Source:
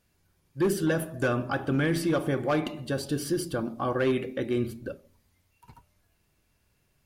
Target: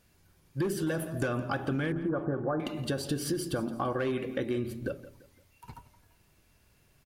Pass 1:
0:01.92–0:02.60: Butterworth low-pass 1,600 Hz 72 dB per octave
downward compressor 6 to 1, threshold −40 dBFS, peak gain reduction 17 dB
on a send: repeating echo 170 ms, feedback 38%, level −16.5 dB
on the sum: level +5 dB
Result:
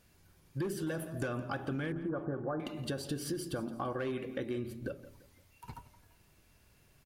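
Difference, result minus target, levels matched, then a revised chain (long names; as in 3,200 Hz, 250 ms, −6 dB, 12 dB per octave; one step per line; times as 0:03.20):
downward compressor: peak gain reduction +5.5 dB
0:01.92–0:02.60: Butterworth low-pass 1,600 Hz 72 dB per octave
downward compressor 6 to 1, threshold −33.5 dBFS, peak gain reduction 11.5 dB
on a send: repeating echo 170 ms, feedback 38%, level −16.5 dB
on the sum: level +5 dB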